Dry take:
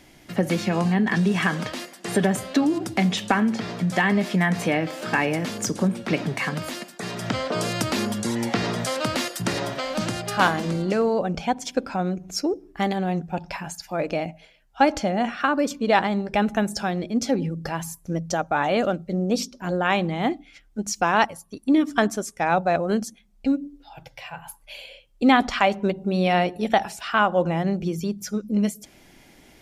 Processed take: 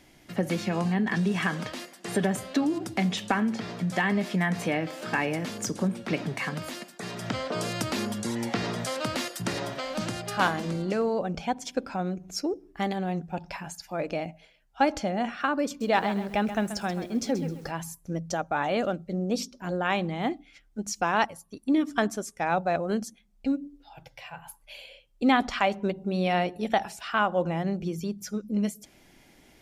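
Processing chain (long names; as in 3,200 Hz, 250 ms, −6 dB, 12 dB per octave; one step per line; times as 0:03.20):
0:15.67–0:17.71: feedback echo at a low word length 132 ms, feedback 35%, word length 7 bits, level −11 dB
level −5 dB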